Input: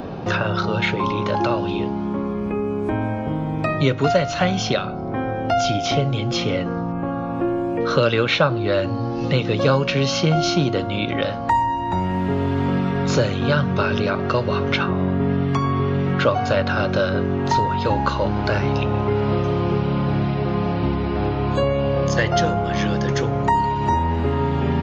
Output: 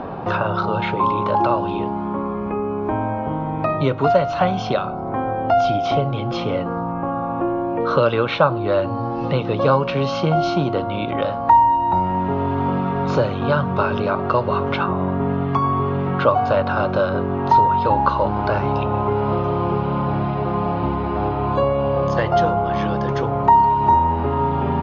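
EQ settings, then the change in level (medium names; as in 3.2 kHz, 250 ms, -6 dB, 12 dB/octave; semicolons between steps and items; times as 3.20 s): dynamic bell 1.8 kHz, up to -7 dB, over -40 dBFS, Q 1.8; distance through air 190 m; peaking EQ 1 kHz +10.5 dB 1.5 oct; -2.0 dB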